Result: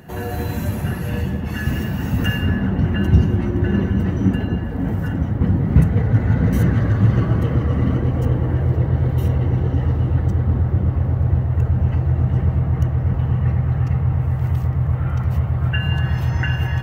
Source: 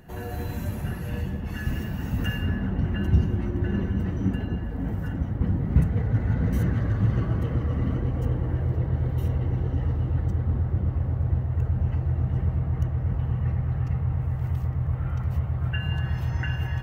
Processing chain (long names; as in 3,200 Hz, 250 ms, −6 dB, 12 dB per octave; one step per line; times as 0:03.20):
high-pass filter 70 Hz
level +8.5 dB